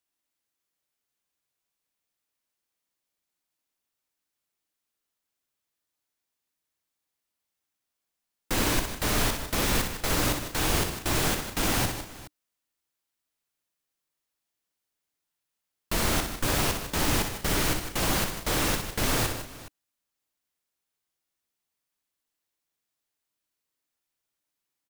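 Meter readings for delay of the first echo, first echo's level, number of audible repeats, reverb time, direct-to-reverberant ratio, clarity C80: 61 ms, −6.5 dB, 4, no reverb audible, no reverb audible, no reverb audible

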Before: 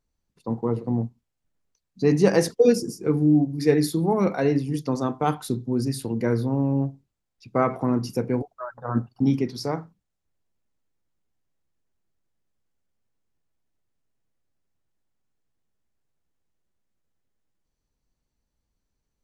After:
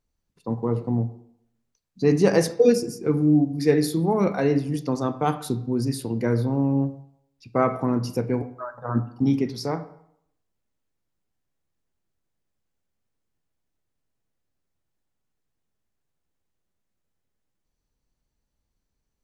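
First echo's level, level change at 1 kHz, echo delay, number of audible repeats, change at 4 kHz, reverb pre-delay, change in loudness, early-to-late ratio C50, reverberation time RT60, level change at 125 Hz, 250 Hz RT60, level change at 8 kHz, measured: no echo audible, 0.0 dB, no echo audible, no echo audible, 0.0 dB, 14 ms, +0.5 dB, 15.0 dB, 0.70 s, +0.5 dB, 0.75 s, 0.0 dB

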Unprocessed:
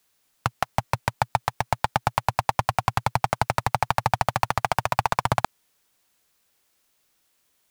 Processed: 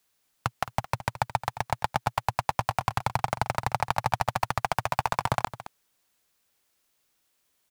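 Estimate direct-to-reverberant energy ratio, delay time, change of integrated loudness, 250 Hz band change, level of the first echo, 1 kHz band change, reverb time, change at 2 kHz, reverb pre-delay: no reverb audible, 218 ms, −4.0 dB, −4.0 dB, −14.5 dB, −4.0 dB, no reverb audible, −4.0 dB, no reverb audible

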